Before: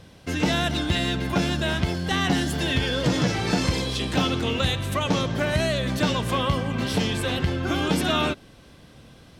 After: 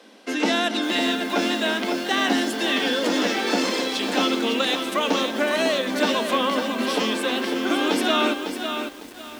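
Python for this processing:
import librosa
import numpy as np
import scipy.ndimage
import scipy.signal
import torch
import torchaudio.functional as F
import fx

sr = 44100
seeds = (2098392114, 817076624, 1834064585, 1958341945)

y = scipy.signal.sosfilt(scipy.signal.butter(16, 210.0, 'highpass', fs=sr, output='sos'), x)
y = fx.high_shelf(y, sr, hz=9100.0, db=-6.5)
y = fx.echo_crushed(y, sr, ms=552, feedback_pct=35, bits=7, wet_db=-6.5)
y = y * librosa.db_to_amplitude(3.0)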